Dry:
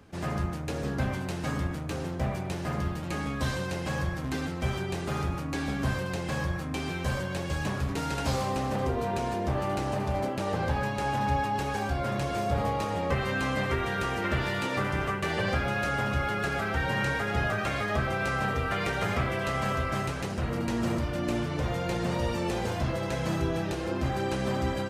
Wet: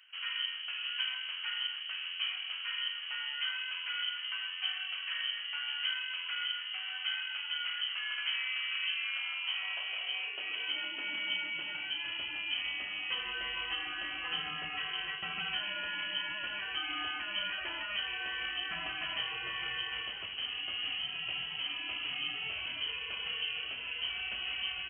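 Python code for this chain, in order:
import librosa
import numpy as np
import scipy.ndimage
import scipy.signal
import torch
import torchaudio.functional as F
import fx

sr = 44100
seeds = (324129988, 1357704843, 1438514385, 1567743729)

y = fx.freq_invert(x, sr, carrier_hz=3100)
y = fx.filter_sweep_highpass(y, sr, from_hz=1400.0, to_hz=61.0, start_s=9.05, end_s=12.55, q=2.0)
y = y * 10.0 ** (-9.0 / 20.0)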